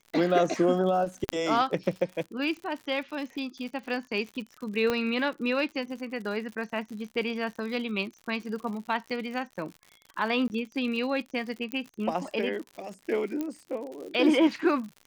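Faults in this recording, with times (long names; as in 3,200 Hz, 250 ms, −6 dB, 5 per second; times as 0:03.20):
surface crackle 84 per second −37 dBFS
0:01.29: click −12 dBFS
0:04.90: click −13 dBFS
0:10.48–0:10.50: drop-out 19 ms
0:11.72: click −17 dBFS
0:13.41: click −19 dBFS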